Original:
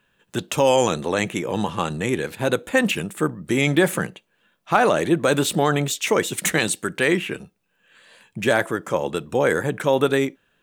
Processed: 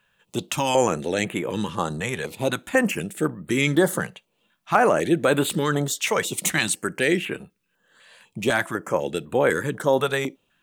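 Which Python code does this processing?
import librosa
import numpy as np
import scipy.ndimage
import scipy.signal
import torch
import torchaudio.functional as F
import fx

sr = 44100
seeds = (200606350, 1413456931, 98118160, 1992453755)

y = fx.low_shelf(x, sr, hz=150.0, db=-4.0)
y = fx.filter_held_notch(y, sr, hz=4.0, low_hz=310.0, high_hz=5600.0)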